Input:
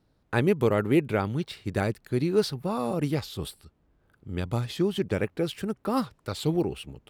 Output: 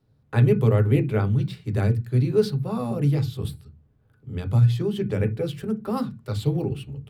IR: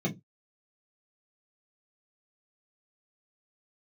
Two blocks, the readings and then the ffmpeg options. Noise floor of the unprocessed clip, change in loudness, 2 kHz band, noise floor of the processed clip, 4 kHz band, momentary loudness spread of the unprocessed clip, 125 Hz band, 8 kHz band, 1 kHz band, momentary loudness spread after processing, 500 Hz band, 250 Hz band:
-68 dBFS, +4.5 dB, -3.0 dB, -62 dBFS, -3.0 dB, 8 LU, +10.0 dB, no reading, -2.5 dB, 10 LU, +1.0 dB, +1.5 dB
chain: -filter_complex "[0:a]asplit=2[s0][s1];[s1]aresample=22050,aresample=44100[s2];[1:a]atrim=start_sample=2205,asetrate=29547,aresample=44100[s3];[s2][s3]afir=irnorm=-1:irlink=0,volume=0.224[s4];[s0][s4]amix=inputs=2:normalize=0,volume=0.75"

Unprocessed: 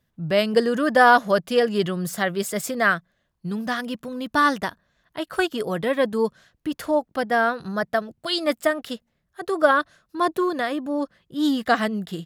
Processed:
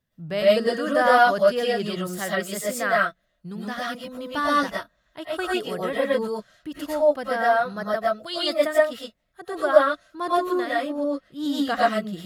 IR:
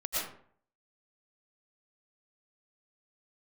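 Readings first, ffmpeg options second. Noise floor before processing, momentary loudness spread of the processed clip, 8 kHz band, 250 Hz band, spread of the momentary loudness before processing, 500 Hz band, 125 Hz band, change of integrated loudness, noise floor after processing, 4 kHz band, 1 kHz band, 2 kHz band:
-73 dBFS, 14 LU, -1.0 dB, -3.5 dB, 12 LU, +1.0 dB, -4.5 dB, -0.5 dB, -71 dBFS, -0.5 dB, -1.0 dB, -2.5 dB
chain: -filter_complex "[1:a]atrim=start_sample=2205,atrim=end_sample=6174[s0];[0:a][s0]afir=irnorm=-1:irlink=0,volume=0.562"

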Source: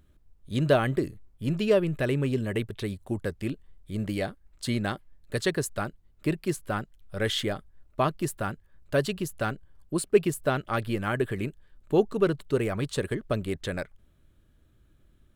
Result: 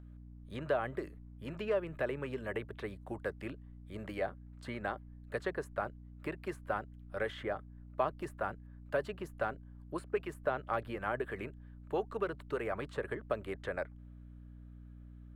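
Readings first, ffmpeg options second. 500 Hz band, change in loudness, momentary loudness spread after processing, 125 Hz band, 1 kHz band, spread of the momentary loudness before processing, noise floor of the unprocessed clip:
-9.0 dB, -10.0 dB, 16 LU, -15.0 dB, -5.5 dB, 12 LU, -62 dBFS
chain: -filter_complex "[0:a]acrossover=split=920|2300[s0][s1][s2];[s0]acompressor=threshold=0.0447:ratio=4[s3];[s1]acompressor=threshold=0.00891:ratio=4[s4];[s2]acompressor=threshold=0.00447:ratio=4[s5];[s3][s4][s5]amix=inputs=3:normalize=0,acrossover=split=470 2200:gain=0.158 1 0.178[s6][s7][s8];[s6][s7][s8]amix=inputs=3:normalize=0,aeval=exprs='val(0)+0.00282*(sin(2*PI*60*n/s)+sin(2*PI*2*60*n/s)/2+sin(2*PI*3*60*n/s)/3+sin(2*PI*4*60*n/s)/4+sin(2*PI*5*60*n/s)/5)':c=same,volume=1.12"

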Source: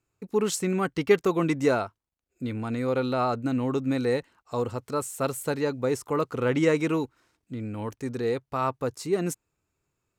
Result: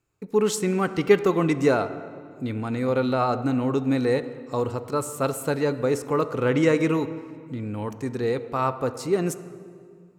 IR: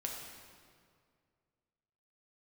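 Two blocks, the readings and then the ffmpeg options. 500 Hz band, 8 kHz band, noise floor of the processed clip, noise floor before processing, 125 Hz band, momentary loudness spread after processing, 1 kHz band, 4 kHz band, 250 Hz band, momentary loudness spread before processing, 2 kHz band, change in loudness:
+3.0 dB, +1.0 dB, -49 dBFS, -83 dBFS, +3.5 dB, 12 LU, +3.0 dB, +1.5 dB, +3.0 dB, 11 LU, +2.5 dB, +3.0 dB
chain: -filter_complex "[0:a]asplit=2[s0][s1];[1:a]atrim=start_sample=2205,highshelf=f=5500:g=-12[s2];[s1][s2]afir=irnorm=-1:irlink=0,volume=0.501[s3];[s0][s3]amix=inputs=2:normalize=0"

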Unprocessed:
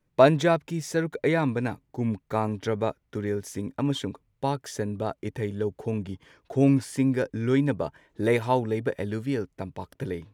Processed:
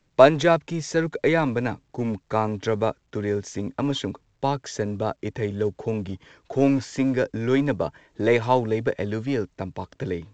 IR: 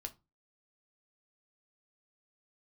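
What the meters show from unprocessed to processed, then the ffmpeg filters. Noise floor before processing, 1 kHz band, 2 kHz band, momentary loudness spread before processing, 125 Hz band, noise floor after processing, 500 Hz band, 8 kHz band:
-73 dBFS, +4.0 dB, +4.0 dB, 12 LU, 0.0 dB, -68 dBFS, +3.5 dB, +2.0 dB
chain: -filter_complex "[0:a]acrossover=split=260|2200[s0][s1][s2];[s0]volume=39.8,asoftclip=hard,volume=0.0251[s3];[s3][s1][s2]amix=inputs=3:normalize=0,volume=1.58" -ar 16000 -c:a pcm_alaw

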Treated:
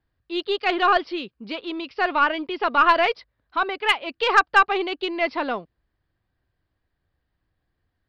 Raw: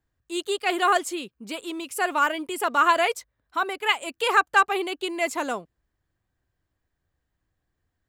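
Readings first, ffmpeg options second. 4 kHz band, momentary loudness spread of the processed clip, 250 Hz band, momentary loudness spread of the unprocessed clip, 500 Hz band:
+2.5 dB, 14 LU, +2.5 dB, 13 LU, +2.5 dB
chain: -af "aresample=11025,aresample=44100,aeval=exprs='0.501*(cos(1*acos(clip(val(0)/0.501,-1,1)))-cos(1*PI/2))+0.126*(cos(2*acos(clip(val(0)/0.501,-1,1)))-cos(2*PI/2))+0.1*(cos(4*acos(clip(val(0)/0.501,-1,1)))-cos(4*PI/2))+0.0282*(cos(6*acos(clip(val(0)/0.501,-1,1)))-cos(6*PI/2))+0.00562*(cos(8*acos(clip(val(0)/0.501,-1,1)))-cos(8*PI/2))':c=same,volume=1.33"

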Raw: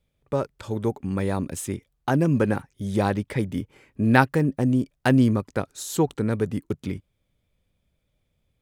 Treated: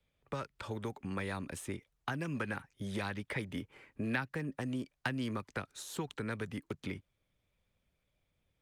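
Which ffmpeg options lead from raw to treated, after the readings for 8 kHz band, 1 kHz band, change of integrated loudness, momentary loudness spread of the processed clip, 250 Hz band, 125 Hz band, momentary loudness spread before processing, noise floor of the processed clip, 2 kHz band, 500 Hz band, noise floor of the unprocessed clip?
-12.5 dB, -15.0 dB, -15.0 dB, 7 LU, -16.5 dB, -16.5 dB, 12 LU, -82 dBFS, -10.0 dB, -16.5 dB, -74 dBFS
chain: -filter_complex "[0:a]tiltshelf=f=740:g=-5.5,acrossover=split=320|960[s0][s1][s2];[s0]acompressor=threshold=0.0141:ratio=4[s3];[s1]acompressor=threshold=0.0316:ratio=4[s4];[s2]acompressor=threshold=0.0316:ratio=4[s5];[s3][s4][s5]amix=inputs=3:normalize=0,lowpass=f=2300:p=1,acrossover=split=240|1400[s6][s7][s8];[s7]acompressor=threshold=0.0126:ratio=16[s9];[s6][s9][s8]amix=inputs=3:normalize=0,volume=0.794" -ar 48000 -c:a libopus -b:a 48k

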